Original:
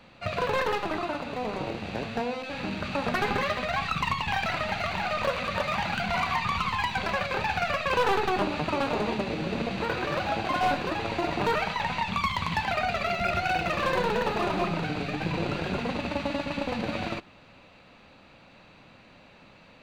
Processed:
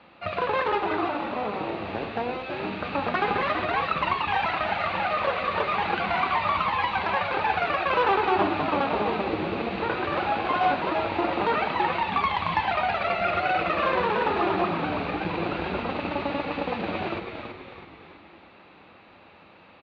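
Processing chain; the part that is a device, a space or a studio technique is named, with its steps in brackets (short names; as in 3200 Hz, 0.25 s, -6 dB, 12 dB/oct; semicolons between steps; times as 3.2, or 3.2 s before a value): frequency-shifting delay pedal into a guitar cabinet (frequency-shifting echo 0.328 s, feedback 50%, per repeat -100 Hz, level -6 dB; speaker cabinet 87–3800 Hz, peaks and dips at 130 Hz -10 dB, 230 Hz -3 dB, 340 Hz +4 dB, 820 Hz +4 dB, 1200 Hz +4 dB)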